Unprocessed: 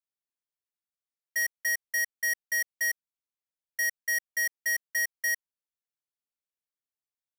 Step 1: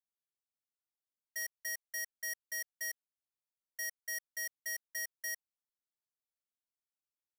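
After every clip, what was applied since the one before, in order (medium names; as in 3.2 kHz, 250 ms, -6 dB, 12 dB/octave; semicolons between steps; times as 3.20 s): peaking EQ 2.2 kHz -9.5 dB 0.61 oct; trim -7 dB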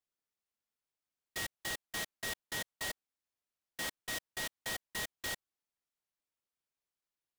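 delay time shaken by noise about 1.4 kHz, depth 0.067 ms; trim +1 dB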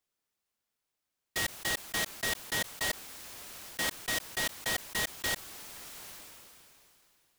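decay stretcher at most 21 dB/s; trim +6.5 dB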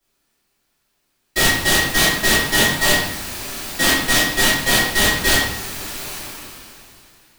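reverberation RT60 0.75 s, pre-delay 3 ms, DRR -13.5 dB; trim +2 dB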